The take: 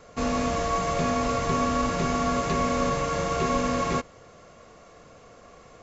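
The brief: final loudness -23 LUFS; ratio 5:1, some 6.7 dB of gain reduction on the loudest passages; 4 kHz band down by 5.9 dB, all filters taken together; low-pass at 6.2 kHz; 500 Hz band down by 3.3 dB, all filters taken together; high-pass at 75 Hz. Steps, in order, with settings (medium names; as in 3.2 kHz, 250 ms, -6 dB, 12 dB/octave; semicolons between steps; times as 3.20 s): high-pass 75 Hz; low-pass 6.2 kHz; peaking EQ 500 Hz -4 dB; peaking EQ 4 kHz -7 dB; compression 5:1, threshold -30 dBFS; trim +10.5 dB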